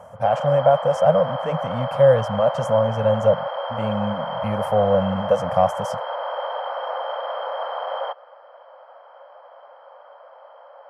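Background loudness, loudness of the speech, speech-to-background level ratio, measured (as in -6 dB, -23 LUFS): -28.0 LUFS, -20.5 LUFS, 7.5 dB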